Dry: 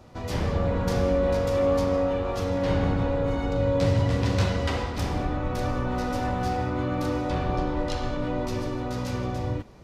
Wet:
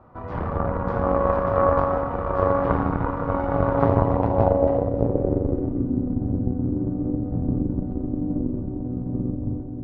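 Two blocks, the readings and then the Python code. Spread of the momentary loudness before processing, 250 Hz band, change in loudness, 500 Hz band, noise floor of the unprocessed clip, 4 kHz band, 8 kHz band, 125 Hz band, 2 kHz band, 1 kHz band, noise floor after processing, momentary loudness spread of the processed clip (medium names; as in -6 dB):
7 LU, +4.0 dB, +3.0 dB, +3.0 dB, -33 dBFS, under -20 dB, under -30 dB, +1.5 dB, -2.5 dB, +5.0 dB, -31 dBFS, 8 LU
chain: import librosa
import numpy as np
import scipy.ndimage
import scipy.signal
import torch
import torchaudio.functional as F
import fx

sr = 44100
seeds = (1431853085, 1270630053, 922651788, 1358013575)

y = fx.echo_diffused(x, sr, ms=977, feedback_pct=61, wet_db=-5)
y = fx.cheby_harmonics(y, sr, harmonics=(2, 3), levels_db=(-7, -17), full_scale_db=-10.5)
y = fx.filter_sweep_lowpass(y, sr, from_hz=1200.0, to_hz=270.0, start_s=3.76, end_s=6.01, q=2.5)
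y = y * 10.0 ** (2.0 / 20.0)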